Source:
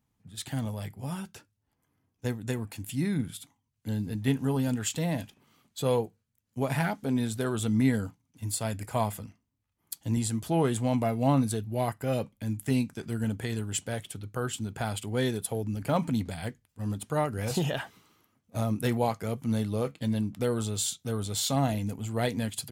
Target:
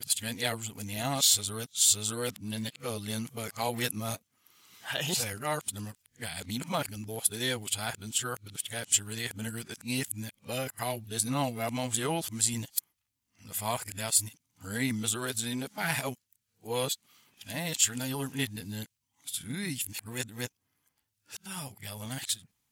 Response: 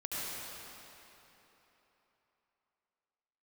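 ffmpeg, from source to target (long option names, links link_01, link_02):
-af "areverse,tiltshelf=frequency=1300:gain=-8.5"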